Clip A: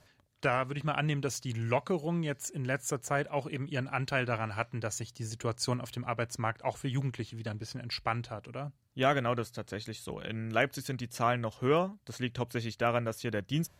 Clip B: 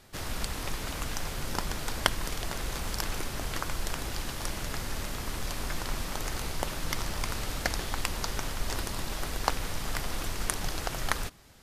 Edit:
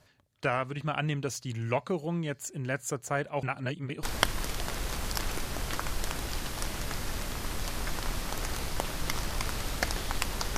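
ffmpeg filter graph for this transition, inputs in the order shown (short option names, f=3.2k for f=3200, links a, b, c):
-filter_complex "[0:a]apad=whole_dur=10.57,atrim=end=10.57,asplit=2[a][b];[a]atrim=end=3.432[c];[b]atrim=start=3.428:end=4.032,asetpts=PTS-STARTPTS,areverse[d];[1:a]atrim=start=1.858:end=8.4[e];[c][d]acrossfade=d=0.004:c1=hsin:c2=hsin[f];[f][e]acrossfade=d=0.004:c1=hsin:c2=hsin"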